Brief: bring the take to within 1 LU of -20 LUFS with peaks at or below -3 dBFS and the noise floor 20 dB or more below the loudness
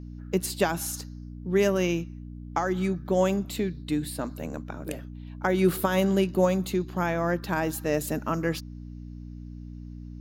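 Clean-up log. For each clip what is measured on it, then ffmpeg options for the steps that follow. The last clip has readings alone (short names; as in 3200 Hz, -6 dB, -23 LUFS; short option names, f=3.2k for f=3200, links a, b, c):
hum 60 Hz; harmonics up to 300 Hz; hum level -38 dBFS; loudness -27.5 LUFS; peak -9.0 dBFS; loudness target -20.0 LUFS
-> -af "bandreject=f=60:t=h:w=4,bandreject=f=120:t=h:w=4,bandreject=f=180:t=h:w=4,bandreject=f=240:t=h:w=4,bandreject=f=300:t=h:w=4"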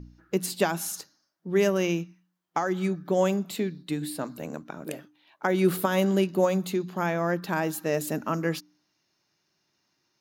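hum none; loudness -27.5 LUFS; peak -9.5 dBFS; loudness target -20.0 LUFS
-> -af "volume=7.5dB,alimiter=limit=-3dB:level=0:latency=1"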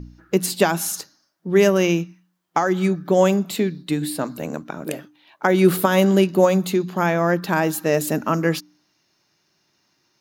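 loudness -20.5 LUFS; peak -3.0 dBFS; noise floor -68 dBFS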